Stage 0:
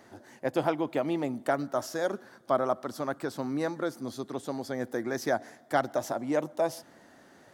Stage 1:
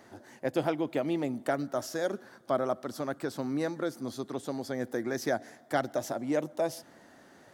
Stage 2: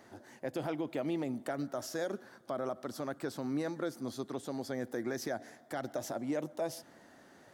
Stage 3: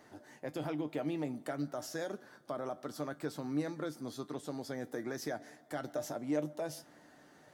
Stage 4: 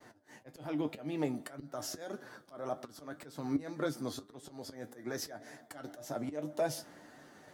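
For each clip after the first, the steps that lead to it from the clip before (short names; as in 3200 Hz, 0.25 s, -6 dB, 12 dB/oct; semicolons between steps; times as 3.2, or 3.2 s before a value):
dynamic EQ 1000 Hz, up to -6 dB, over -41 dBFS, Q 1.4
limiter -23.5 dBFS, peak gain reduction 9.5 dB; gain -2.5 dB
resonator 150 Hz, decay 0.15 s, harmonics all, mix 70%; gain +4 dB
auto swell 0.292 s; expander -58 dBFS; flange 1.8 Hz, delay 7.1 ms, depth 4.3 ms, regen +56%; gain +9.5 dB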